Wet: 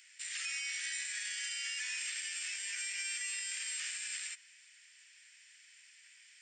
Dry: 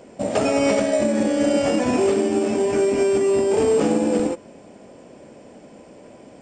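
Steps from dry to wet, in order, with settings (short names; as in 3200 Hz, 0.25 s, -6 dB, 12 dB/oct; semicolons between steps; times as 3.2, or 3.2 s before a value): elliptic high-pass 1800 Hz, stop band 60 dB; limiter -29.5 dBFS, peak gain reduction 11 dB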